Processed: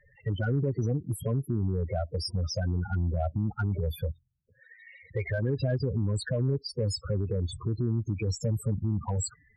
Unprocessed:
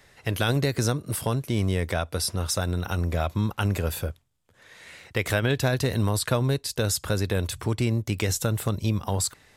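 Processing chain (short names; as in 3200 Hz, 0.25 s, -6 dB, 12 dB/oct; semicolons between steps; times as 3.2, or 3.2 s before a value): loudest bins only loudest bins 8; limiter -20.5 dBFS, peak gain reduction 5.5 dB; added harmonics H 5 -33 dB, 6 -45 dB, 7 -44 dB, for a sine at -20.5 dBFS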